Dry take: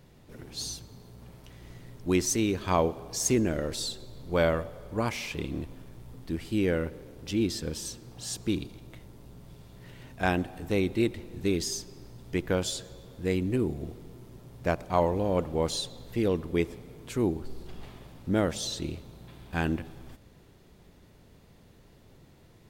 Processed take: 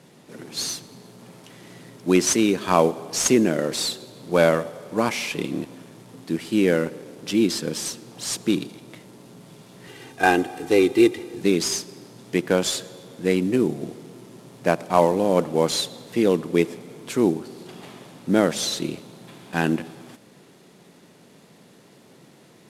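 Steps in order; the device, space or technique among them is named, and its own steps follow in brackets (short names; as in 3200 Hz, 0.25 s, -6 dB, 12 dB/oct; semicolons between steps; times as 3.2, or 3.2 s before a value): early wireless headset (HPF 160 Hz 24 dB/oct; CVSD 64 kbps); 9.87–11.41 comb 2.5 ms, depth 69%; gain +8 dB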